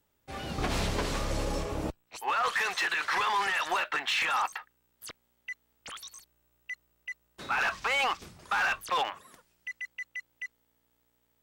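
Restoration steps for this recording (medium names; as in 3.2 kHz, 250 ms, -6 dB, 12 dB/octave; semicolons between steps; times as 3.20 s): clip repair -23 dBFS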